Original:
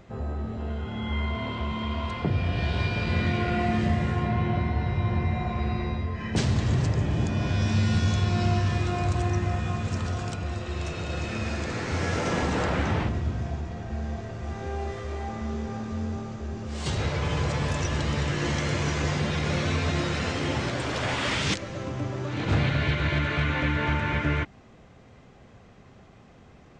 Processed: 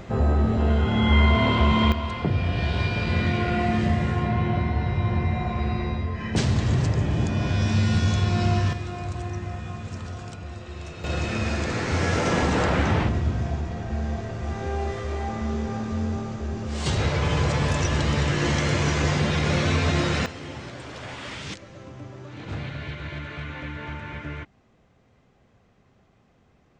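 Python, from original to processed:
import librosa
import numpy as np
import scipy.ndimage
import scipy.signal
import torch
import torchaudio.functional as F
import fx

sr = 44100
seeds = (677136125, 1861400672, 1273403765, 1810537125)

y = fx.gain(x, sr, db=fx.steps((0.0, 11.0), (1.92, 2.0), (8.73, -5.5), (11.04, 4.0), (20.26, -9.0)))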